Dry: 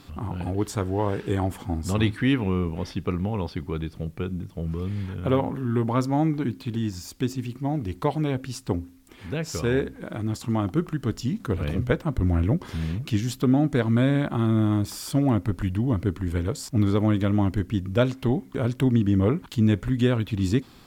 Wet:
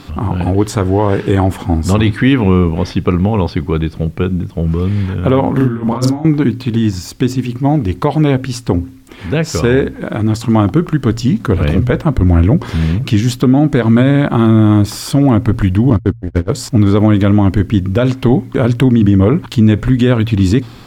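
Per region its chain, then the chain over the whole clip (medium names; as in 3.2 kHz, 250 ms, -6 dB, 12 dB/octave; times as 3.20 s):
5.56–6.25 s: compressor with a negative ratio -29 dBFS, ratio -0.5 + doubling 40 ms -2.5 dB
15.90–16.50 s: median filter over 15 samples + gate -25 dBFS, range -52 dB
whole clip: treble shelf 6.3 kHz -7 dB; de-hum 57.79 Hz, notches 2; loudness maximiser +15.5 dB; trim -1 dB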